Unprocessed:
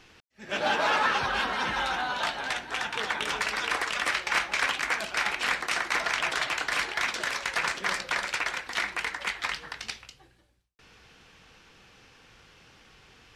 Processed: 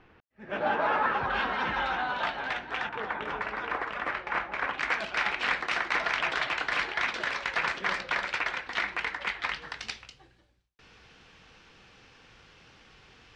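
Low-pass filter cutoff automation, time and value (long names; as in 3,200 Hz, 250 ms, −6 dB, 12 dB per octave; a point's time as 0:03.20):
1,600 Hz
from 0:01.30 2,700 Hz
from 0:02.89 1,500 Hz
from 0:04.78 3,600 Hz
from 0:09.62 5,900 Hz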